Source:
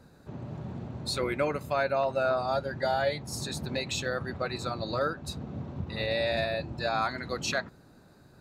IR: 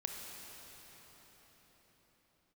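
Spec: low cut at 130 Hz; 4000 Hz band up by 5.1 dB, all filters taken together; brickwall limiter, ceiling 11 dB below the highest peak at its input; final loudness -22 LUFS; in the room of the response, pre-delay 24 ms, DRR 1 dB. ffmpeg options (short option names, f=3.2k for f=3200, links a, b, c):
-filter_complex "[0:a]highpass=130,equalizer=f=4k:t=o:g=5.5,alimiter=level_in=1.5dB:limit=-24dB:level=0:latency=1,volume=-1.5dB,asplit=2[a][b];[1:a]atrim=start_sample=2205,adelay=24[c];[b][c]afir=irnorm=-1:irlink=0,volume=-1.5dB[d];[a][d]amix=inputs=2:normalize=0,volume=11dB"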